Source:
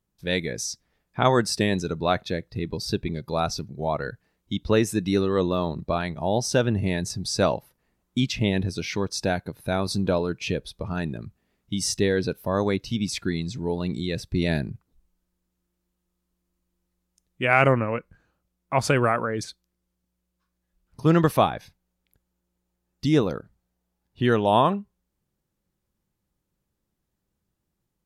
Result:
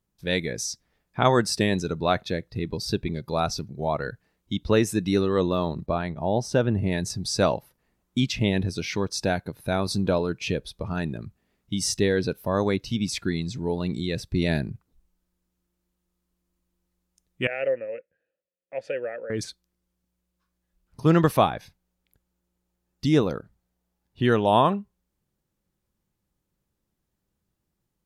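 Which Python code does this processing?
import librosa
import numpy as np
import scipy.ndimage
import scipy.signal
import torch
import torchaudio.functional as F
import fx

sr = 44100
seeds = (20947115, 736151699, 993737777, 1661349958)

y = fx.high_shelf(x, sr, hz=2400.0, db=-9.5, at=(5.86, 6.92))
y = fx.vowel_filter(y, sr, vowel='e', at=(17.47, 19.3))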